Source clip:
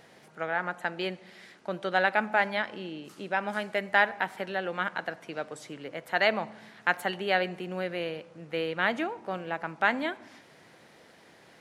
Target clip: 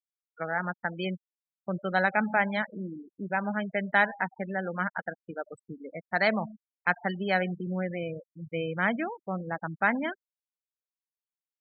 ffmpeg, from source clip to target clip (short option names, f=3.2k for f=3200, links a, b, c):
-af "afftfilt=real='re*gte(hypot(re,im),0.0355)':imag='im*gte(hypot(re,im),0.0355)':win_size=1024:overlap=0.75,asuperstop=centerf=2800:order=8:qfactor=7.7,lowshelf=f=260:t=q:w=1.5:g=6"